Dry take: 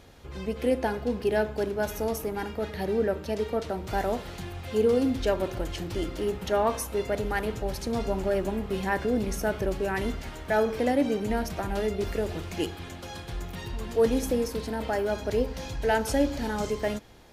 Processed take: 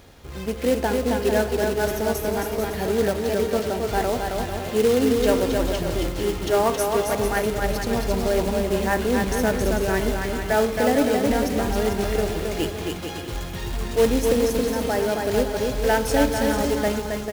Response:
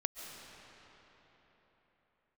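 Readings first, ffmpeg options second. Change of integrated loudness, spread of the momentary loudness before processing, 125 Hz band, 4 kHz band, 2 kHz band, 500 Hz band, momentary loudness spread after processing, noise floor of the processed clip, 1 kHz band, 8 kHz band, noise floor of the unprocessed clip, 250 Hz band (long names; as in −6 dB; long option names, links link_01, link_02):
+6.0 dB, 9 LU, +6.0 dB, +8.0 dB, +6.5 dB, +6.0 dB, 7 LU, −32 dBFS, +6.0 dB, +9.0 dB, −41 dBFS, +5.5 dB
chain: -af "acrusher=bits=3:mode=log:mix=0:aa=0.000001,aecho=1:1:270|445.5|559.6|633.7|681.9:0.631|0.398|0.251|0.158|0.1,volume=3.5dB"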